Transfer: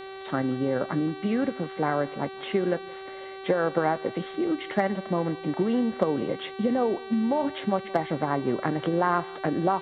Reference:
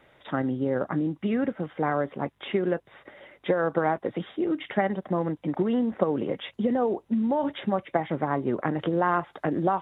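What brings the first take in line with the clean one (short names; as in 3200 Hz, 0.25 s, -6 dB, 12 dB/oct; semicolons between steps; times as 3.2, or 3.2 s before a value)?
clip repair -11.5 dBFS; de-hum 385.5 Hz, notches 11; expander -32 dBFS, range -21 dB; inverse comb 0.171 s -23 dB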